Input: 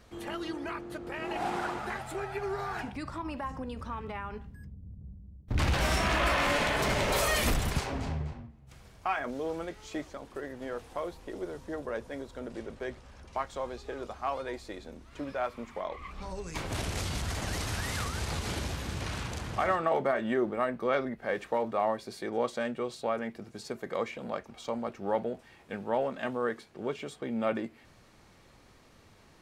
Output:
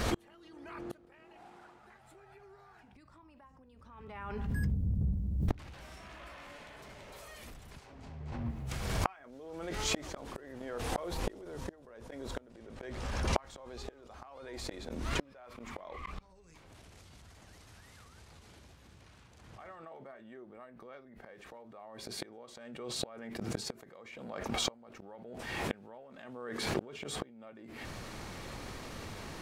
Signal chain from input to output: inverted gate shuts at -33 dBFS, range -37 dB; swell ahead of each attack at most 35 dB/s; trim +14 dB

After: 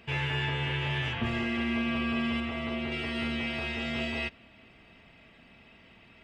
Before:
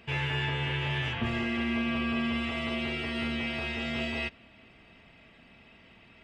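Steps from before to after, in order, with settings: 2.40–2.92 s: treble shelf 3 kHz -9 dB

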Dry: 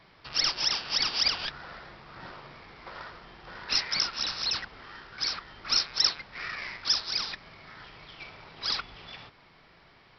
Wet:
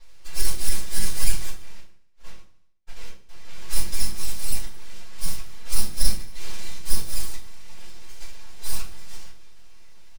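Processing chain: comb filter that takes the minimum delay 5.5 ms; 1.54–3.29 s: gate -44 dBFS, range -48 dB; comb 2.5 ms, depth 65%; in parallel at +0.5 dB: compression, threshold -39 dBFS, peak gain reduction 19.5 dB; on the sum: full-wave rectifier; tone controls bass +5 dB, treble +8 dB; feedback delay 74 ms, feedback 59%, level -18 dB; simulated room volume 160 m³, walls furnished, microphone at 4.3 m; trim -15 dB

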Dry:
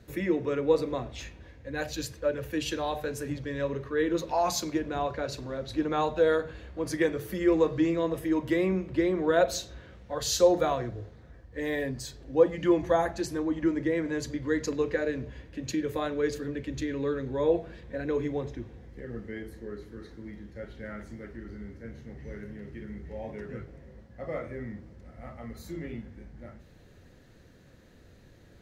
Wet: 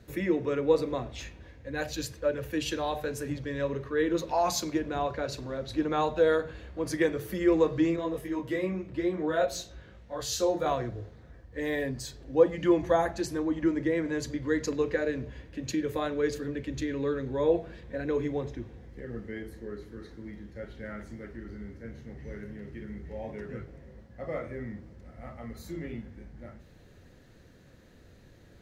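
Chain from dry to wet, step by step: 7.96–10.66 s: detune thickener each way 18 cents

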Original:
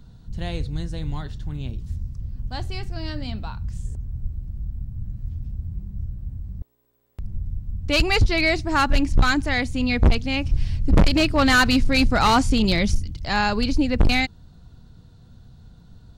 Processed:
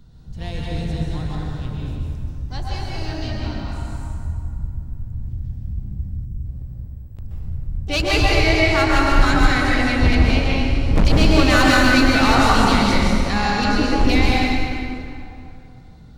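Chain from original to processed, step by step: plate-style reverb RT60 2.8 s, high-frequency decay 0.6×, pre-delay 115 ms, DRR -5 dB; harmony voices +5 st -12 dB; time-frequency box 6.25–6.45 s, 450–4900 Hz -26 dB; de-hum 47.49 Hz, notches 38; trim -2 dB

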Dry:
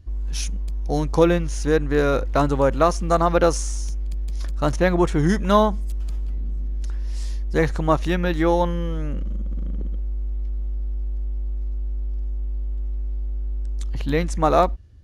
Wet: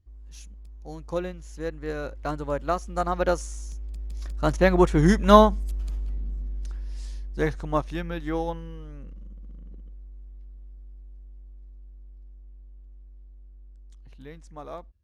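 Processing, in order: Doppler pass-by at 5.48 s, 16 m/s, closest 22 m; upward expansion 1.5:1, over -32 dBFS; trim +3.5 dB

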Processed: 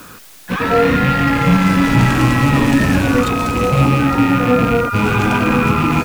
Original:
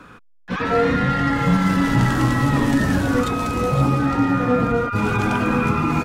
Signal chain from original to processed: rattle on loud lows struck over -24 dBFS, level -19 dBFS; in parallel at -8 dB: word length cut 6-bit, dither triangular; on the sum: trim +2 dB

